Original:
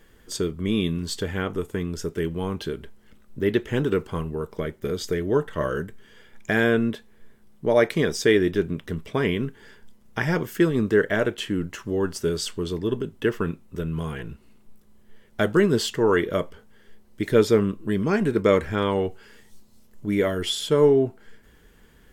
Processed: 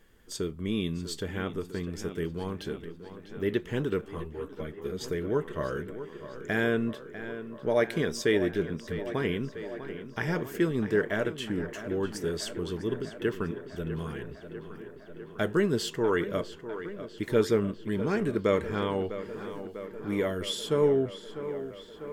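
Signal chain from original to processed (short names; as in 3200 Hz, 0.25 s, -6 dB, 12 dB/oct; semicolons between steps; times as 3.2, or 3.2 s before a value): tape echo 0.649 s, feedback 80%, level -11 dB, low-pass 3700 Hz; 4.01–5.01 ensemble effect; gain -6.5 dB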